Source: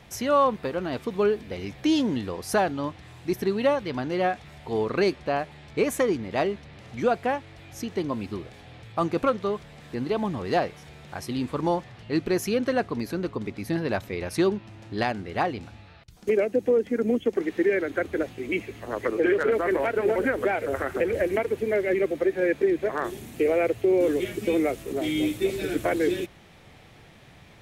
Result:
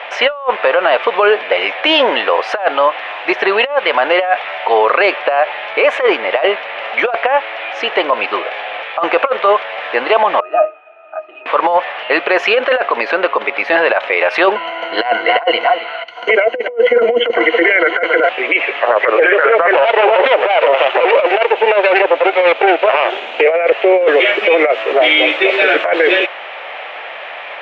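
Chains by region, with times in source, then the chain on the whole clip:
10.4–11.46 tone controls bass -13 dB, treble -14 dB + notches 50/100/150/200/250/300/350/400/450 Hz + octave resonator D#, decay 0.17 s
14.55–18.29 ripple EQ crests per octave 1.9, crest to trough 16 dB + echo 0.271 s -16 dB
19.73–23.41 minimum comb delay 0.3 ms + HPF 200 Hz + notch 1100 Hz, Q 16
whole clip: Chebyshev band-pass 570–2900 Hz, order 3; negative-ratio compressor -31 dBFS, ratio -0.5; maximiser +26 dB; gain -1 dB

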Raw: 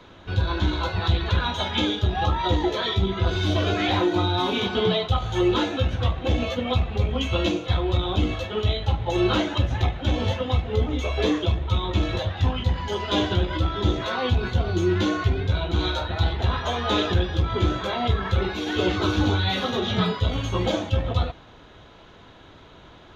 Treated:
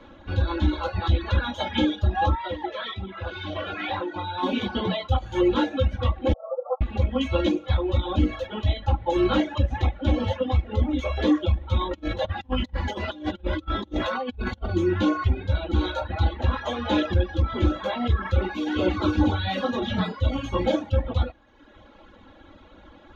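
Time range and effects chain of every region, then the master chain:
2.35–4.43 BPF 140–3300 Hz + bell 280 Hz -13 dB 1.5 oct
6.33–6.81 formant sharpening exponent 1.5 + brick-wall FIR band-pass 480–1400 Hz
11.79–14.69 negative-ratio compressor -28 dBFS, ratio -0.5 + short-mantissa float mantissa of 6-bit
whole clip: reverb removal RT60 0.95 s; high shelf 3000 Hz -11.5 dB; comb 3.6 ms, depth 80%

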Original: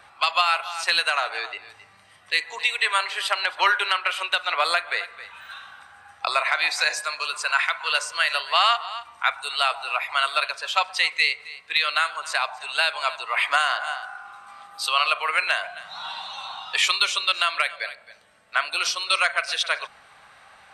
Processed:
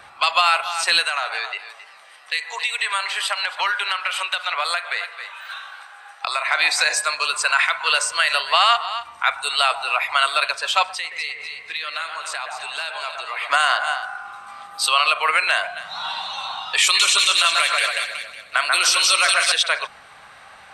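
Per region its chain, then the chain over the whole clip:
1.05–6.51 HPF 610 Hz + compressor 2.5:1, threshold -27 dBFS + warbling echo 0.267 s, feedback 69%, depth 192 cents, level -23.5 dB
10.92–13.5 compressor 2.5:1, threshold -36 dBFS + echo with dull and thin repeats by turns 0.124 s, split 2100 Hz, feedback 65%, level -5 dB
16.81–19.52 bell 11000 Hz +9 dB 1.7 oct + split-band echo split 2100 Hz, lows 0.138 s, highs 0.184 s, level -4.5 dB + mismatched tape noise reduction decoder only
whole clip: dynamic EQ 8100 Hz, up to +7 dB, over -55 dBFS, Q 7.8; limiter -12 dBFS; gain +6 dB

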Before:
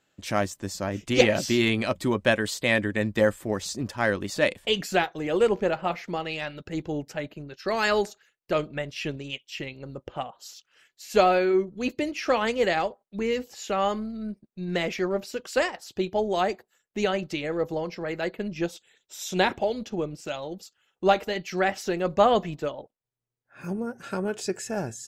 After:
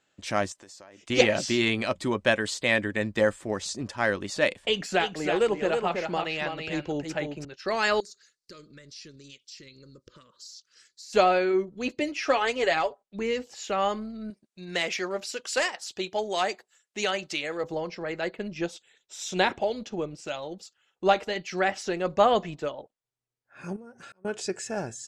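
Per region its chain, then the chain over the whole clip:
0.52–1.1 tone controls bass -14 dB, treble +1 dB + compressor 12:1, threshold -43 dBFS
4.63–7.45 echo 0.324 s -6.5 dB + three-band squash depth 40%
8–11.13 resonant high shelf 3600 Hz +7.5 dB, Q 3 + compressor 3:1, threshold -46 dBFS + Butterworth band-stop 760 Hz, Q 1.2
12–13.01 bell 190 Hz -9.5 dB 0.5 oct + comb 7.1 ms, depth 58%
14.3–17.64 tilt +2.5 dB/oct + hard clip -17 dBFS
23.76–24.25 compressor 4:1, threshold -42 dBFS + auto swell 0.546 s
whole clip: LPF 9300 Hz 24 dB/oct; low shelf 330 Hz -5 dB

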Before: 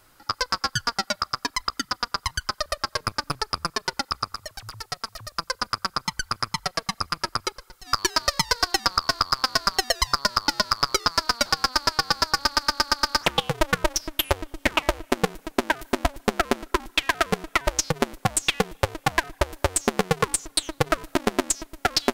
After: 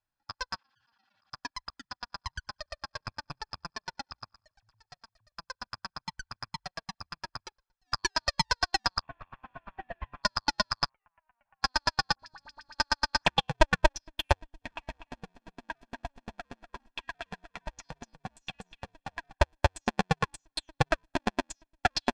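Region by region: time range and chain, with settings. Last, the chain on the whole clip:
0.56–1.3 speaker cabinet 160–5700 Hz, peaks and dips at 170 Hz -7 dB, 390 Hz -8 dB, 610 Hz -9 dB, 2900 Hz +7 dB + auto swell 0.122 s + fast leveller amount 100%
1.81–5.08 steep low-pass 9400 Hz 72 dB/oct + feedback echo 94 ms, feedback 42%, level -21 dB
9.02–10.23 CVSD 16 kbps + sample leveller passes 1
10.89–11.62 bell 350 Hz -13.5 dB 0.95 oct + compressor 2:1, threshold -34 dBFS + rippled Chebyshev low-pass 3000 Hz, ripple 6 dB
12.15–12.75 notches 50/100/150/200/250/300 Hz + compressor, threshold -23 dBFS + dispersion highs, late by 44 ms, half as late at 1300 Hz
14.37–19.33 comb 4.3 ms, depth 33% + compressor 16:1, threshold -21 dBFS + echo 0.245 s -6.5 dB
whole clip: LPF 5500 Hz 12 dB/oct; comb 1.2 ms, depth 53%; upward expander 2.5:1, over -37 dBFS

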